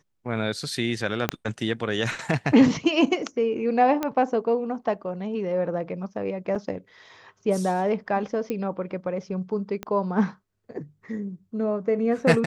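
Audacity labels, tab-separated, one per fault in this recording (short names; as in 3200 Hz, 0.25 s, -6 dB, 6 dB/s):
1.290000	1.290000	pop -7 dBFS
4.030000	4.030000	pop -12 dBFS
6.550000	6.560000	gap 5.9 ms
8.500000	8.500000	pop -16 dBFS
9.830000	9.830000	pop -17 dBFS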